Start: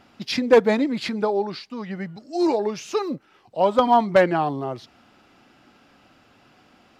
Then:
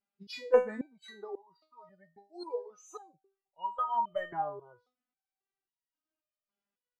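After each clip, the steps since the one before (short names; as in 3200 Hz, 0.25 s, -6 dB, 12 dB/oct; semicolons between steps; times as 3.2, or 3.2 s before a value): spectral noise reduction 26 dB; stepped resonator 3.7 Hz 200–960 Hz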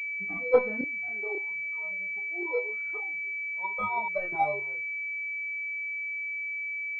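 chorus voices 6, 0.49 Hz, delay 27 ms, depth 1.8 ms; pulse-width modulation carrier 2300 Hz; gain +7.5 dB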